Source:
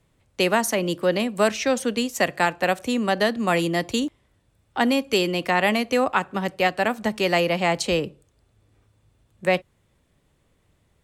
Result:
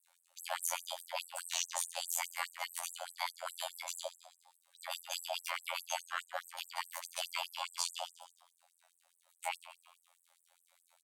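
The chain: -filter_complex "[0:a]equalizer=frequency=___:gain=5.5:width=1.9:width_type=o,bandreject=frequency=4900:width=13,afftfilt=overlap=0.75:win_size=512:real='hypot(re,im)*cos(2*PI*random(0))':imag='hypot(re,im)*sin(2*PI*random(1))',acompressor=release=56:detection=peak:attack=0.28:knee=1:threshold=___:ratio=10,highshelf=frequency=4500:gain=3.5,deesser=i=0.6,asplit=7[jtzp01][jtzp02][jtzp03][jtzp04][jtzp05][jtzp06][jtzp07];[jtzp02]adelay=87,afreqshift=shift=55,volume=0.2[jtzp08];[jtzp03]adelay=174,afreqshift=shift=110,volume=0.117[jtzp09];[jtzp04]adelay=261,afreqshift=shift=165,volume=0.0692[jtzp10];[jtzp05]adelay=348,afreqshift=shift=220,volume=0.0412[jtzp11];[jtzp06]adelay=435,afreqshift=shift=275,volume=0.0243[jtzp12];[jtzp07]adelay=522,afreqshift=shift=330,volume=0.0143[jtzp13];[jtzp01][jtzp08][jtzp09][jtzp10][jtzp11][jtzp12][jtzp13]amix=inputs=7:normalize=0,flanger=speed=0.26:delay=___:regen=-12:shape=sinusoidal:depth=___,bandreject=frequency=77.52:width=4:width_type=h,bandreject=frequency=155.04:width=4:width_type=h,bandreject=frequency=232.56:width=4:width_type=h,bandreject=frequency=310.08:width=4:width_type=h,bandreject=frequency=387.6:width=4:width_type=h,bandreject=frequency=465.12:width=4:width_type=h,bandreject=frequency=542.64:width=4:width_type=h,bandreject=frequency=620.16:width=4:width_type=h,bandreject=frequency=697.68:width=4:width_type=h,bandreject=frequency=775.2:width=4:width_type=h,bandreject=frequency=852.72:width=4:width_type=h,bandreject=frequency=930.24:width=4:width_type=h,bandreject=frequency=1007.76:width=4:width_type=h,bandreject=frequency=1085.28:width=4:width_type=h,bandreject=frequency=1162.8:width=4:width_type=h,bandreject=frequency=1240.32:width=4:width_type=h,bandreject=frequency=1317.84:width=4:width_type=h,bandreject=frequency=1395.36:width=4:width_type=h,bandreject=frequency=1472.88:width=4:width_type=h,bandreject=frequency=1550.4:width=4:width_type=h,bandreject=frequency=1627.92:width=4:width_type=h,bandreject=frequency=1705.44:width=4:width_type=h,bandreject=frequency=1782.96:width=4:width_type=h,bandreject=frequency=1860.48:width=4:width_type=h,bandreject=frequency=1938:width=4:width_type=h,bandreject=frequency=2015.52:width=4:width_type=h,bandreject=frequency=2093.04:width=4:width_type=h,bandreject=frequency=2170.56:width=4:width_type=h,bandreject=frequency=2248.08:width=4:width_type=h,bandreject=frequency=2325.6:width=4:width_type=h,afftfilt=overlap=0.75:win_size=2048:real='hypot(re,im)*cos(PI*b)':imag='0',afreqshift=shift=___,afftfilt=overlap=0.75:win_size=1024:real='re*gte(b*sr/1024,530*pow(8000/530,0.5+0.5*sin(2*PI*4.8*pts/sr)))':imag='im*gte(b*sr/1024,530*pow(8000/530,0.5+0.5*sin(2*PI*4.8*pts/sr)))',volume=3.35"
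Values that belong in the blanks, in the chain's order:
12000, 0.02, 10, 7.1, 300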